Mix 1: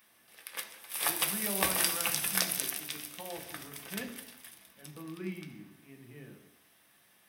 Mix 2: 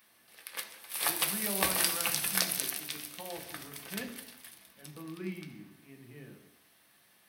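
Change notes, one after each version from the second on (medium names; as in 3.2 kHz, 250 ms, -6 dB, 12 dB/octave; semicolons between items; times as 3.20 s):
master: remove band-stop 4.3 kHz, Q 11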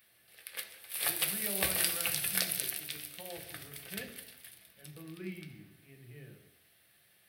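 master: add fifteen-band graphic EQ 100 Hz +7 dB, 250 Hz -10 dB, 1 kHz -12 dB, 6.3 kHz -7 dB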